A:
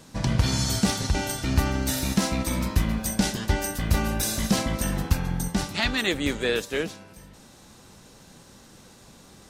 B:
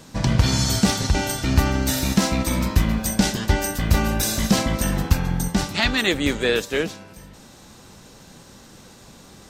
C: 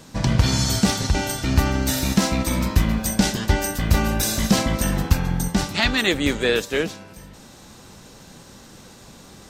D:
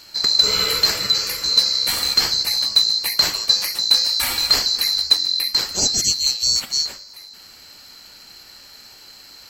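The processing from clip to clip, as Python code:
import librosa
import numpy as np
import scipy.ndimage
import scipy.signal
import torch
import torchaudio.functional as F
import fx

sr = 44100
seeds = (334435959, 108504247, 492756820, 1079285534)

y1 = fx.peak_eq(x, sr, hz=10000.0, db=-6.5, octaves=0.21)
y1 = y1 * 10.0 ** (4.5 / 20.0)
y2 = fx.rider(y1, sr, range_db=10, speed_s=2.0)
y3 = fx.band_swap(y2, sr, width_hz=4000)
y3 = y3 * 10.0 ** (1.0 / 20.0)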